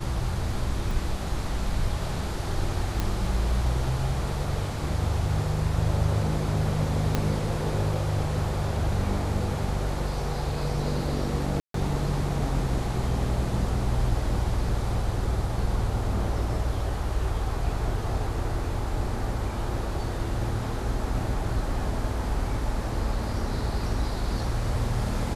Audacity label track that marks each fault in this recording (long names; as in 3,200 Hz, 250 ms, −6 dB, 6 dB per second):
0.910000	0.910000	drop-out 2.4 ms
3.000000	3.000000	click
7.150000	7.150000	click −10 dBFS
11.600000	11.740000	drop-out 143 ms